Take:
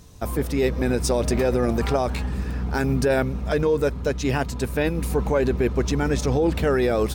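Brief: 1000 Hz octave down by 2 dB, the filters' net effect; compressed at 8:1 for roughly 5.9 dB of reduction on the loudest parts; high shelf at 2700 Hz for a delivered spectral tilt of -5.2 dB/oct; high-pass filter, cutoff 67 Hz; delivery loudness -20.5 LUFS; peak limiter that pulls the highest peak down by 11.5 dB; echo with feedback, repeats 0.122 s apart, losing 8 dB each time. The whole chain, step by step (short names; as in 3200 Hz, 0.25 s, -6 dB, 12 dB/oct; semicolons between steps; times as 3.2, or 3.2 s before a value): HPF 67 Hz; bell 1000 Hz -3.5 dB; high shelf 2700 Hz +4.5 dB; compressor 8:1, threshold -23 dBFS; limiter -24.5 dBFS; feedback echo 0.122 s, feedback 40%, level -8 dB; gain +12.5 dB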